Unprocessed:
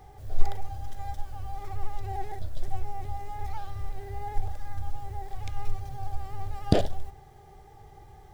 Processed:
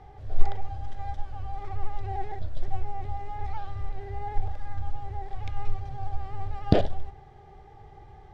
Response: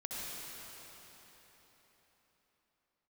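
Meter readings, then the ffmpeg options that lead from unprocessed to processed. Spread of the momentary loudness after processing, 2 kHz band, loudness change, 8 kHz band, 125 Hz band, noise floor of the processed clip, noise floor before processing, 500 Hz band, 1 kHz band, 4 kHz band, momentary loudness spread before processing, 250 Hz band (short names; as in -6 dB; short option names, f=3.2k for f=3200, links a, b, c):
16 LU, +1.0 dB, +1.5 dB, n/a, +1.5 dB, -49 dBFS, -51 dBFS, +1.5 dB, +1.5 dB, -2.0 dB, 15 LU, +1.5 dB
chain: -af "lowpass=3.6k,volume=1.5dB"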